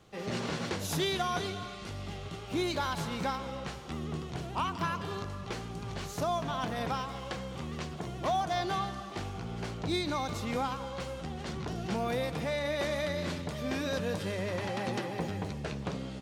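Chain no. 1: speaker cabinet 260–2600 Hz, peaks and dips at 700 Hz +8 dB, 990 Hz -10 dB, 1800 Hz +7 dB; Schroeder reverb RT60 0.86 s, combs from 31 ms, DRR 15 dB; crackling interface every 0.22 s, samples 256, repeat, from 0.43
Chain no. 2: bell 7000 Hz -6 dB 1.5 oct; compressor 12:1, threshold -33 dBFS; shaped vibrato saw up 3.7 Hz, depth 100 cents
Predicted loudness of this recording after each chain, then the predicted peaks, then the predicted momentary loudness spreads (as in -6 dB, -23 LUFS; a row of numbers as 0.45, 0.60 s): -34.5, -38.5 LUFS; -16.5, -23.5 dBFS; 13, 4 LU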